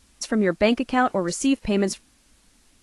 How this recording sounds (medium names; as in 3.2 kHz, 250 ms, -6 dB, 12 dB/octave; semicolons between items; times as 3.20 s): a quantiser's noise floor 10-bit, dither triangular; AAC